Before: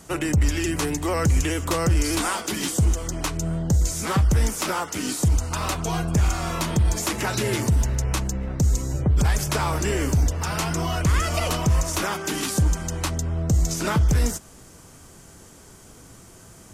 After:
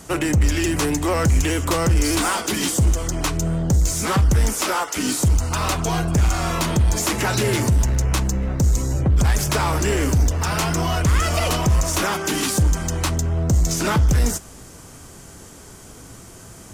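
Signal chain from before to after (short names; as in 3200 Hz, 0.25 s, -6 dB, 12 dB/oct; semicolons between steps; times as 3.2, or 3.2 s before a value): 4.53–4.96 HPF 200 Hz -> 550 Hz 12 dB/oct; in parallel at -8 dB: wavefolder -24 dBFS; on the sum: reverb, pre-delay 3 ms, DRR 19 dB; gain +2.5 dB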